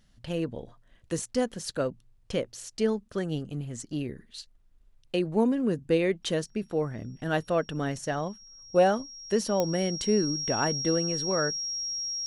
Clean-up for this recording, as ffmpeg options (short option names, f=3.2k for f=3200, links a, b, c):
-af "adeclick=t=4,bandreject=f=5.6k:w=30"